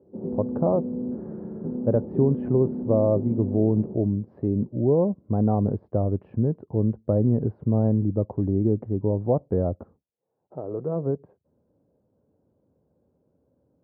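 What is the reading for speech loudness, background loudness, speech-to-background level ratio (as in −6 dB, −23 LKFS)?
−25.0 LKFS, −32.0 LKFS, 7.0 dB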